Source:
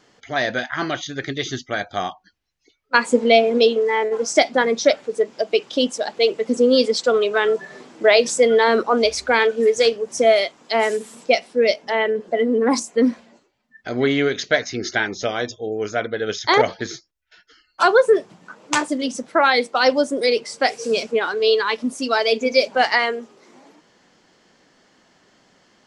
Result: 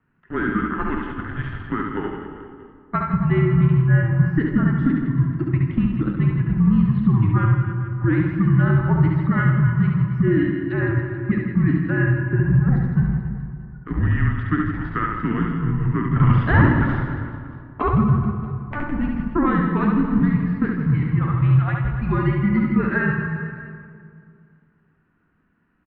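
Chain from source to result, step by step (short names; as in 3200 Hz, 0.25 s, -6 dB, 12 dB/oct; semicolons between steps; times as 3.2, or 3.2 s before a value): resonant low shelf 690 Hz +8.5 dB, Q 3; harmonic-percussive split percussive -5 dB; differentiator; in parallel at +3 dB: level quantiser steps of 10 dB; on the sum: sample leveller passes 2; compressor, threshold -19 dBFS, peak gain reduction 10.5 dB; 16.16–17.82 sample leveller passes 3; reverse bouncing-ball echo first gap 70 ms, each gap 1.3×, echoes 5; reverb RT60 2.5 s, pre-delay 10 ms, DRR 7 dB; mistuned SSB -310 Hz 200–2100 Hz; gain +2.5 dB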